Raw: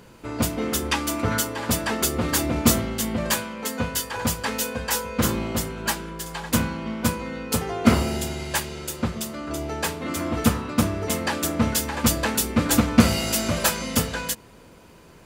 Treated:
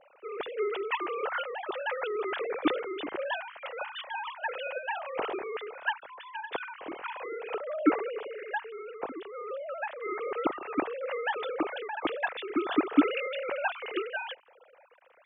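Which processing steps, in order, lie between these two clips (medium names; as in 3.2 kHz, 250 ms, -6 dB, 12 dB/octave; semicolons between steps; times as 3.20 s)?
formants replaced by sine waves; 7.54–9.91 s: low-pass 2.1 kHz 12 dB/octave; trim -8.5 dB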